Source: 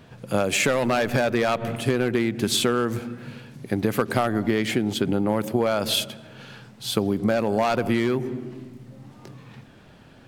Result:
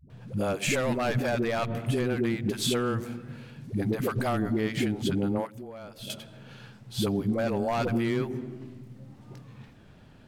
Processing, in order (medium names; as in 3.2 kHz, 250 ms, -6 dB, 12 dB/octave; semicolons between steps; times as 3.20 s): 5.37–6.00 s: gate -17 dBFS, range -14 dB; bass shelf 160 Hz +8 dB; phase dispersion highs, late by 101 ms, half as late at 310 Hz; trim -6.5 dB